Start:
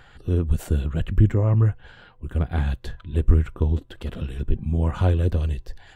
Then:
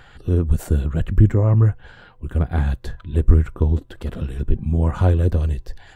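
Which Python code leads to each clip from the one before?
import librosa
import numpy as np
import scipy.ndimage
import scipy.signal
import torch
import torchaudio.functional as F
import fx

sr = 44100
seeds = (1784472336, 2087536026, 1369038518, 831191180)

y = fx.dynamic_eq(x, sr, hz=3000.0, q=1.5, threshold_db=-55.0, ratio=4.0, max_db=-6)
y = y * librosa.db_to_amplitude(3.5)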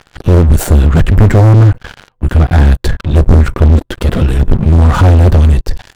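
y = fx.leveller(x, sr, passes=5)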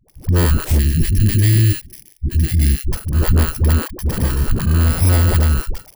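y = fx.bit_reversed(x, sr, seeds[0], block=32)
y = fx.dispersion(y, sr, late='highs', ms=85.0, hz=370.0)
y = fx.spec_box(y, sr, start_s=0.78, length_s=2.14, low_hz=400.0, high_hz=1600.0, gain_db=-20)
y = y * librosa.db_to_amplitude(-7.5)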